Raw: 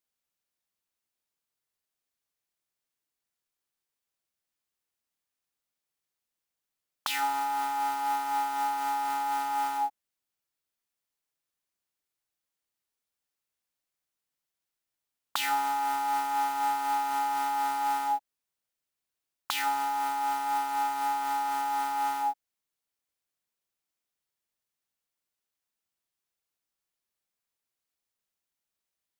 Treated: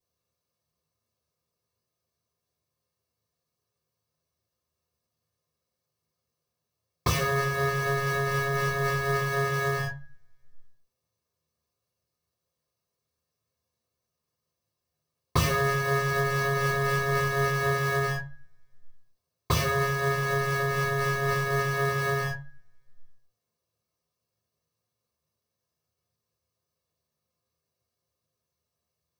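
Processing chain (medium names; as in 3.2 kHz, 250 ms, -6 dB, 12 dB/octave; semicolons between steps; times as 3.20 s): comb filter that takes the minimum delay 1.8 ms; reverberation RT60 0.30 s, pre-delay 3 ms, DRR -10.5 dB; trim -6.5 dB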